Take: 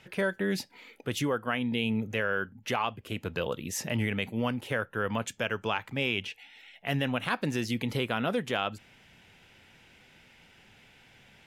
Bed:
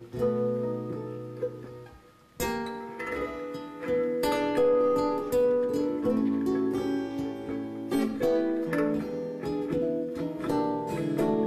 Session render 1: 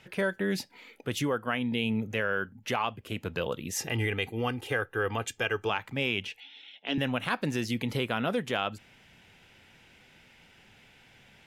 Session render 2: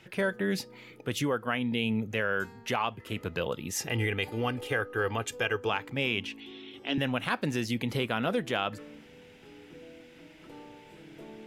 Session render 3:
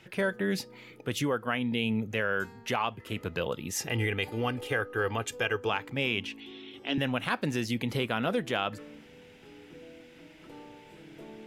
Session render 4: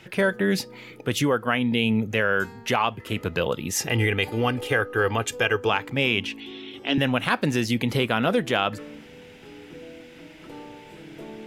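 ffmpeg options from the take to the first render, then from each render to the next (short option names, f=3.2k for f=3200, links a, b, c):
-filter_complex "[0:a]asettb=1/sr,asplit=3[a][b][c];[a]atrim=end=3.764[d];[b]atrim=start=3.76:end=5.7,asetpts=PTS-STARTPTS,afade=t=in:d=0.004:c=qsin,afade=t=out:st=1.936:d=0.004:c=qsin,aecho=1:1:2.5:0.65,atrim=end_sample=85554[e];[c]atrim=start=5.696[f];[d][e]acrossfade=d=0.004:c1=hsin:c2=qsin[g];[g][f]acrossfade=d=0.004:c1=qsin:c2=hsin,asettb=1/sr,asplit=3[h][i][j];[h]atrim=end=6.404[k];[i]atrim=start=6.4:end=6.98,asetpts=PTS-STARTPTS,afade=t=in:d=0.004:c=qsin,afade=t=out:st=0.576:d=0.004:c=qsin,highpass=f=240:w=0.5412,highpass=f=240:w=1.3066,equalizer=f=280:t=q:w=4:g=6,equalizer=f=680:t=q:w=4:g=-7,equalizer=f=1.2k:t=q:w=4:g=-4,equalizer=f=1.9k:t=q:w=4:g=-7,equalizer=f=3.4k:t=q:w=4:g=10,lowpass=f=5.7k:w=0.5412,lowpass=f=5.7k:w=1.3066[l];[j]atrim=start=6.976[m];[k][l]acrossfade=d=0.004:c1=hsin:c2=qsin[n];[n][m]acrossfade=d=0.004:c1=qsin:c2=hsin"
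-filter_complex "[1:a]volume=-21dB[a];[0:a][a]amix=inputs=2:normalize=0"
-af anull
-af "volume=7dB"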